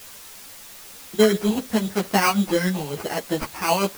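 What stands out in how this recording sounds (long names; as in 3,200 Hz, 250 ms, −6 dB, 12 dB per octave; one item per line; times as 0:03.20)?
aliases and images of a low sample rate 3,600 Hz, jitter 0%
tremolo triangle 7.6 Hz, depth 55%
a quantiser's noise floor 8 bits, dither triangular
a shimmering, thickened sound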